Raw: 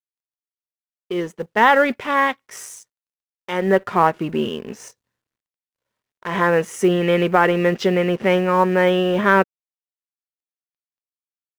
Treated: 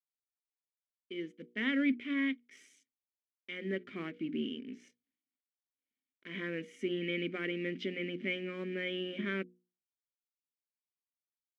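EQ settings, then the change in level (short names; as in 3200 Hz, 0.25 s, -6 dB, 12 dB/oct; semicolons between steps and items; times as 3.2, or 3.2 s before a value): vowel filter i; notches 60/120/180/240/300/360/420/480 Hz; -2.0 dB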